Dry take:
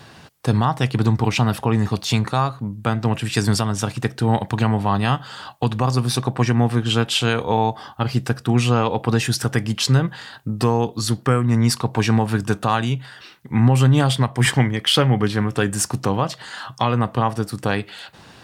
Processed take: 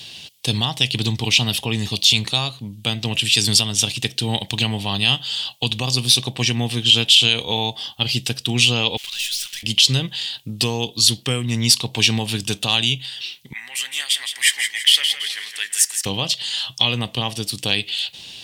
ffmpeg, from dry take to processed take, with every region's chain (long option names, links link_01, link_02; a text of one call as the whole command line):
ffmpeg -i in.wav -filter_complex "[0:a]asettb=1/sr,asplit=3[link_01][link_02][link_03];[link_01]atrim=end=8.974[link_04];[link_02]atrim=start=8.97:end=9.63,asetpts=PTS-STARTPTS,afade=type=in:duration=0.004:curve=qsin,afade=type=out:start_time=0.656:duration=0.004:curve=qsin,aeval=exprs='val(0)+0.5*0.0266*sgn(val(0))':channel_layout=same,highpass=frequency=1400:width=0.5412,highpass=frequency=1400:width=1.3066,aeval=exprs='(tanh(50.1*val(0)+0.45)-tanh(0.45))/50.1':channel_layout=same[link_05];[link_03]atrim=start=9.626[link_06];[link_04][link_05]acrossfade=duration=0.004:curve1=hsin:curve2=qsin[link_07];[link_07][link_06]acrossfade=duration=0.004:curve1=qsin:curve2=hsin,asettb=1/sr,asplit=3[link_08][link_09][link_10];[link_08]atrim=end=13.534[link_11];[link_09]atrim=start=13.53:end=16.06,asetpts=PTS-STARTPTS,afade=type=in:duration=0.004:curve=qsin,afade=type=out:start_time=2.526:duration=0.004:curve=qsin,highpass=frequency=1900:width_type=q:width=5.8,equalizer=frequency=3100:width_type=o:width=1.8:gain=-14,aecho=1:1:165|330|495|660|825:0.398|0.163|0.0669|0.0274|0.0112,atrim=end_sample=111573[link_12];[link_10]atrim=start=16.056[link_13];[link_11][link_12]acrossfade=duration=0.004:curve1=hsin:curve2=qsin[link_14];[link_14][link_13]acrossfade=duration=0.004:curve1=qsin:curve2=hsin,highshelf=frequency=2100:width_type=q:width=3:gain=14,alimiter=level_in=-4dB:limit=-1dB:release=50:level=0:latency=1,volume=-1dB" out.wav